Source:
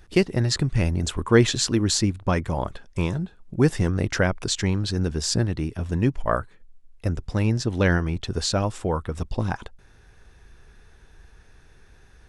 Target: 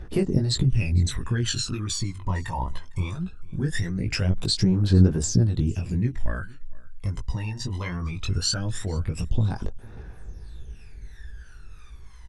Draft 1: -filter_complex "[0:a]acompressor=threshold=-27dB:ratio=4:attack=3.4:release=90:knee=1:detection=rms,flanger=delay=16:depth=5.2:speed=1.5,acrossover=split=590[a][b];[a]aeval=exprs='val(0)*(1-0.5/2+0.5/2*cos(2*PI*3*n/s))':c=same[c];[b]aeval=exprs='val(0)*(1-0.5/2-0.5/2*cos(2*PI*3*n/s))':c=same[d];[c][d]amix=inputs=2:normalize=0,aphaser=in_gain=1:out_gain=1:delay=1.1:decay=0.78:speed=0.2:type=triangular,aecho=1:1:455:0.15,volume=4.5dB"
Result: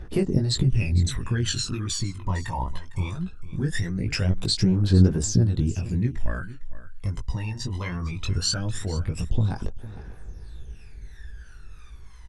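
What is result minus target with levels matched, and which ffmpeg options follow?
echo-to-direct +7.5 dB
-filter_complex "[0:a]acompressor=threshold=-27dB:ratio=4:attack=3.4:release=90:knee=1:detection=rms,flanger=delay=16:depth=5.2:speed=1.5,acrossover=split=590[a][b];[a]aeval=exprs='val(0)*(1-0.5/2+0.5/2*cos(2*PI*3*n/s))':c=same[c];[b]aeval=exprs='val(0)*(1-0.5/2-0.5/2*cos(2*PI*3*n/s))':c=same[d];[c][d]amix=inputs=2:normalize=0,aphaser=in_gain=1:out_gain=1:delay=1.1:decay=0.78:speed=0.2:type=triangular,aecho=1:1:455:0.0631,volume=4.5dB"

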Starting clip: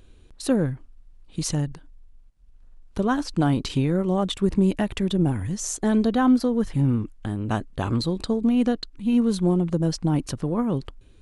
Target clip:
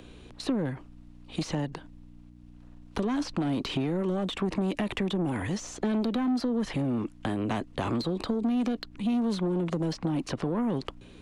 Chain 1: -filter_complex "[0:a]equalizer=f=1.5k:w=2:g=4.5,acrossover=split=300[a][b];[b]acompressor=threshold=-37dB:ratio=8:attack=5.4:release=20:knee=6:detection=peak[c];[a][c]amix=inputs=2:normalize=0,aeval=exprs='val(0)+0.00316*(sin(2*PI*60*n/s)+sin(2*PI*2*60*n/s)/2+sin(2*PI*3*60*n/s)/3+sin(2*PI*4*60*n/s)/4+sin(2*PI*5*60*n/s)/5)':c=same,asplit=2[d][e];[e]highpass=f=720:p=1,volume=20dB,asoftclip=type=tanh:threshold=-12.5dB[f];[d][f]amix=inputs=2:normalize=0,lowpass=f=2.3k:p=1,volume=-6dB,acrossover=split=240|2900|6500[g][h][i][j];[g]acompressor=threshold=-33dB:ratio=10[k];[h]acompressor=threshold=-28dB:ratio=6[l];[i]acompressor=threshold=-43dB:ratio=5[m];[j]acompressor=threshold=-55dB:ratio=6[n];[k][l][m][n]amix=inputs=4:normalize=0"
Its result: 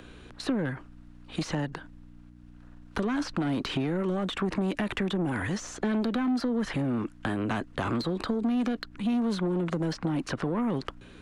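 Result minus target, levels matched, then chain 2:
2000 Hz band +4.5 dB
-filter_complex "[0:a]equalizer=f=1.5k:w=2:g=-4.5,acrossover=split=300[a][b];[b]acompressor=threshold=-37dB:ratio=8:attack=5.4:release=20:knee=6:detection=peak[c];[a][c]amix=inputs=2:normalize=0,aeval=exprs='val(0)+0.00316*(sin(2*PI*60*n/s)+sin(2*PI*2*60*n/s)/2+sin(2*PI*3*60*n/s)/3+sin(2*PI*4*60*n/s)/4+sin(2*PI*5*60*n/s)/5)':c=same,asplit=2[d][e];[e]highpass=f=720:p=1,volume=20dB,asoftclip=type=tanh:threshold=-12.5dB[f];[d][f]amix=inputs=2:normalize=0,lowpass=f=2.3k:p=1,volume=-6dB,acrossover=split=240|2900|6500[g][h][i][j];[g]acompressor=threshold=-33dB:ratio=10[k];[h]acompressor=threshold=-28dB:ratio=6[l];[i]acompressor=threshold=-43dB:ratio=5[m];[j]acompressor=threshold=-55dB:ratio=6[n];[k][l][m][n]amix=inputs=4:normalize=0"

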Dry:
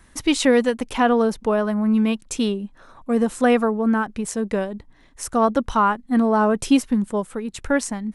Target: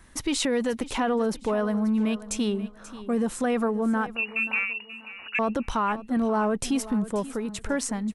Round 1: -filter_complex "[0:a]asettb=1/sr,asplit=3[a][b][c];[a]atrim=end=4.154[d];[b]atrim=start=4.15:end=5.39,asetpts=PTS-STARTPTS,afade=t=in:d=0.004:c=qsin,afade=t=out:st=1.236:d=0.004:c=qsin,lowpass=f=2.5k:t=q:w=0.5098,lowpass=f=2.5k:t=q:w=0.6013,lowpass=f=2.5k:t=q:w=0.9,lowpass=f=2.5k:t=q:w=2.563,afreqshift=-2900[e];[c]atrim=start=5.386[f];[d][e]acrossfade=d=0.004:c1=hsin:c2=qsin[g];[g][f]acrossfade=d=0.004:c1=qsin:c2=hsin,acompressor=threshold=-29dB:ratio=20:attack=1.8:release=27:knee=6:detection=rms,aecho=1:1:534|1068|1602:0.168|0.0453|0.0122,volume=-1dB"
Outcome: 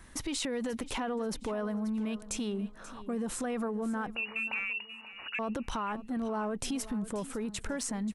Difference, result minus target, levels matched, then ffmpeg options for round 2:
compressor: peak gain reduction +9.5 dB
-filter_complex "[0:a]asettb=1/sr,asplit=3[a][b][c];[a]atrim=end=4.154[d];[b]atrim=start=4.15:end=5.39,asetpts=PTS-STARTPTS,afade=t=in:d=0.004:c=qsin,afade=t=out:st=1.236:d=0.004:c=qsin,lowpass=f=2.5k:t=q:w=0.5098,lowpass=f=2.5k:t=q:w=0.6013,lowpass=f=2.5k:t=q:w=0.9,lowpass=f=2.5k:t=q:w=2.563,afreqshift=-2900[e];[c]atrim=start=5.386[f];[d][e]acrossfade=d=0.004:c1=hsin:c2=qsin[g];[g][f]acrossfade=d=0.004:c1=qsin:c2=hsin,acompressor=threshold=-19dB:ratio=20:attack=1.8:release=27:knee=6:detection=rms,aecho=1:1:534|1068|1602:0.168|0.0453|0.0122,volume=-1dB"

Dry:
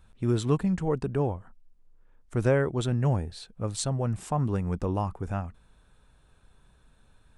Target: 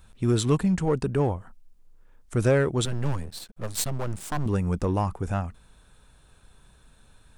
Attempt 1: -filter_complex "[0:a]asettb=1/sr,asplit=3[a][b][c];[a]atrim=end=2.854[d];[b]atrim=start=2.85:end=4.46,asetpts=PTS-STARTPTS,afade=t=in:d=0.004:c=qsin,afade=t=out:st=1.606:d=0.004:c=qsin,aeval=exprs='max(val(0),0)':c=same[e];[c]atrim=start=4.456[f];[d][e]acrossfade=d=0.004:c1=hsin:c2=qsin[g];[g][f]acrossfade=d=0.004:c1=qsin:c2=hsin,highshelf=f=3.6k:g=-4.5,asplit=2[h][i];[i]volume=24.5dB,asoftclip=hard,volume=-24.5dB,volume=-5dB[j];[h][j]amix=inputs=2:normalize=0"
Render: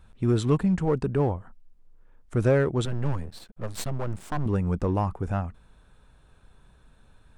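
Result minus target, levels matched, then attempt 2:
8000 Hz band -9.0 dB
-filter_complex "[0:a]asettb=1/sr,asplit=3[a][b][c];[a]atrim=end=2.854[d];[b]atrim=start=2.85:end=4.46,asetpts=PTS-STARTPTS,afade=t=in:d=0.004:c=qsin,afade=t=out:st=1.606:d=0.004:c=qsin,aeval=exprs='max(val(0),0)':c=same[e];[c]atrim=start=4.456[f];[d][e]acrossfade=d=0.004:c1=hsin:c2=qsin[g];[g][f]acrossfade=d=0.004:c1=qsin:c2=hsin,highshelf=f=3.6k:g=7,asplit=2[h][i];[i]volume=24.5dB,asoftclip=hard,volume=-24.5dB,volume=-5dB[j];[h][j]amix=inputs=2:normalize=0"

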